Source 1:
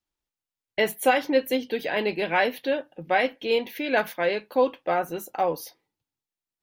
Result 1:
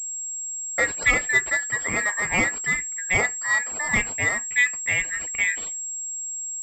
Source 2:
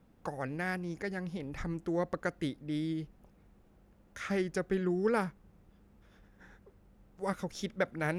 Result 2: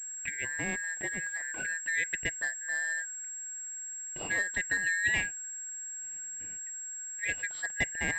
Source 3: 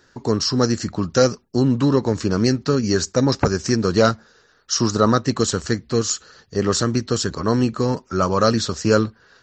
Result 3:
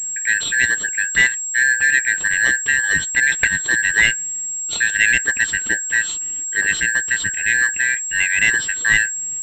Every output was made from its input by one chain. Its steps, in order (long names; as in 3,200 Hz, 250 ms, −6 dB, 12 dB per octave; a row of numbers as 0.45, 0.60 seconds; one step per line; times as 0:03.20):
band-splitting scrambler in four parts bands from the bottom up 2143
harmonic generator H 6 −45 dB, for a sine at −1.5 dBFS
switching amplifier with a slow clock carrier 7,600 Hz
level +1 dB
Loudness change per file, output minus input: +3.0, +3.0, +4.0 LU